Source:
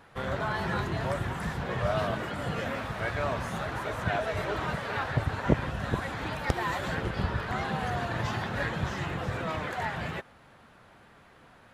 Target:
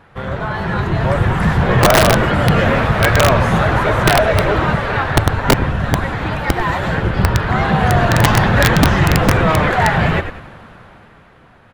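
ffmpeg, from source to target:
-filter_complex "[0:a]equalizer=f=260:w=7.1:g=-3,dynaudnorm=f=140:g=17:m=3.98,bass=f=250:g=4,treble=f=4000:g=-8,asplit=2[s0][s1];[s1]asplit=4[s2][s3][s4][s5];[s2]adelay=96,afreqshift=-75,volume=0.299[s6];[s3]adelay=192,afreqshift=-150,volume=0.119[s7];[s4]adelay=288,afreqshift=-225,volume=0.0479[s8];[s5]adelay=384,afreqshift=-300,volume=0.0191[s9];[s6][s7][s8][s9]amix=inputs=4:normalize=0[s10];[s0][s10]amix=inputs=2:normalize=0,acontrast=84,aeval=exprs='(mod(1.58*val(0)+1,2)-1)/1.58':c=same"

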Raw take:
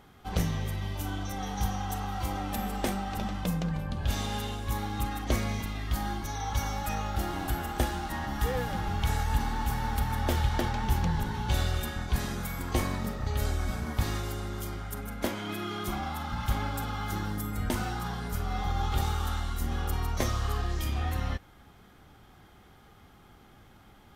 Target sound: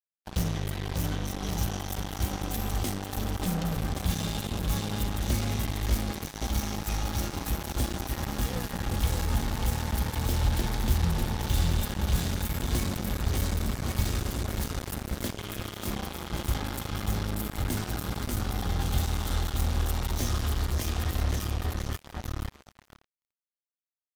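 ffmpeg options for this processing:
-filter_complex "[0:a]aecho=1:1:590|1121|1599|2029|2416:0.631|0.398|0.251|0.158|0.1,acrossover=split=330|3000[s0][s1][s2];[s1]acompressor=threshold=0.00501:ratio=2.5[s3];[s0][s3][s2]amix=inputs=3:normalize=0,acrusher=bits=4:mix=0:aa=0.5"

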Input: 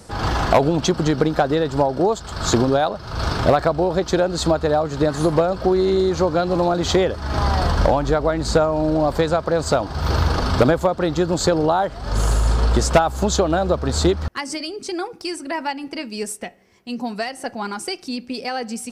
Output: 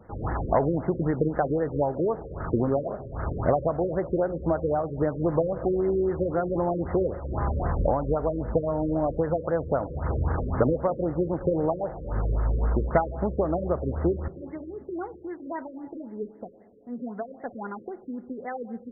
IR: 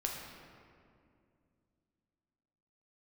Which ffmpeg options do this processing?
-filter_complex "[0:a]asplit=2[s0][s1];[s1]equalizer=f=125:t=o:w=1:g=8,equalizer=f=500:t=o:w=1:g=9,equalizer=f=4000:t=o:w=1:g=-8[s2];[1:a]atrim=start_sample=2205[s3];[s2][s3]afir=irnorm=-1:irlink=0,volume=0.119[s4];[s0][s4]amix=inputs=2:normalize=0,afftfilt=real='re*lt(b*sr/1024,550*pow(2200/550,0.5+0.5*sin(2*PI*3.8*pts/sr)))':imag='im*lt(b*sr/1024,550*pow(2200/550,0.5+0.5*sin(2*PI*3.8*pts/sr)))':win_size=1024:overlap=0.75,volume=0.376"

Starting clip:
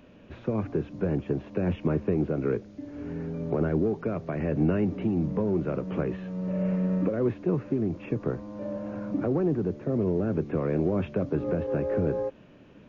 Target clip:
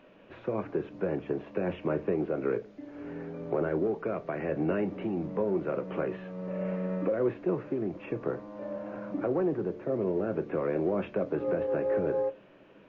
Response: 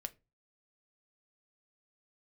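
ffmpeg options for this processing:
-filter_complex "[0:a]bass=f=250:g=-14,treble=f=4000:g=-11[s0];[1:a]atrim=start_sample=2205[s1];[s0][s1]afir=irnorm=-1:irlink=0,volume=1.58"

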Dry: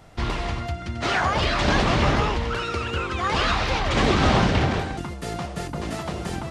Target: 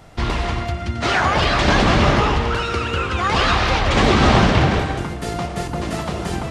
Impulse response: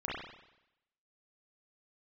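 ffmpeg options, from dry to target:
-filter_complex "[0:a]asplit=2[s0][s1];[1:a]atrim=start_sample=2205,adelay=116[s2];[s1][s2]afir=irnorm=-1:irlink=0,volume=0.251[s3];[s0][s3]amix=inputs=2:normalize=0,volume=1.68"

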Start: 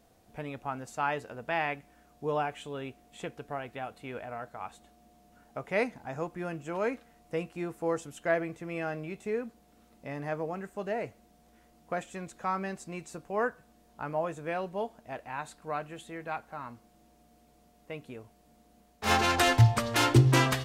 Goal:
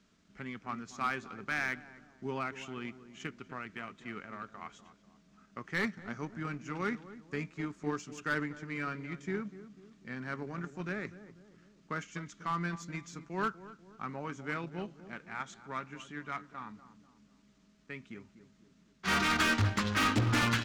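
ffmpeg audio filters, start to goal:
-filter_complex "[0:a]firequalizer=gain_entry='entry(130,0);entry(200,10);entry(320,6);entry(650,-8);entry(1400,10);entry(2600,9);entry(7800,7);entry(12000,-18)':delay=0.05:min_phase=1,acrossover=split=130|5600[s0][s1][s2];[s2]alimiter=level_in=1.26:limit=0.0631:level=0:latency=1,volume=0.794[s3];[s0][s1][s3]amix=inputs=3:normalize=0,asetrate=39289,aresample=44100,atempo=1.12246,asoftclip=type=tanh:threshold=0.0794,asplit=2[s4][s5];[s5]adelay=246,lowpass=f=990:p=1,volume=0.299,asplit=2[s6][s7];[s7]adelay=246,lowpass=f=990:p=1,volume=0.51,asplit=2[s8][s9];[s9]adelay=246,lowpass=f=990:p=1,volume=0.51,asplit=2[s10][s11];[s11]adelay=246,lowpass=f=990:p=1,volume=0.51,asplit=2[s12][s13];[s13]adelay=246,lowpass=f=990:p=1,volume=0.51,asplit=2[s14][s15];[s15]adelay=246,lowpass=f=990:p=1,volume=0.51[s16];[s4][s6][s8][s10][s12][s14][s16]amix=inputs=7:normalize=0,aeval=exprs='0.0891*(cos(1*acos(clip(val(0)/0.0891,-1,1)))-cos(1*PI/2))+0.0158*(cos(3*acos(clip(val(0)/0.0891,-1,1)))-cos(3*PI/2))':c=same,volume=0.75"

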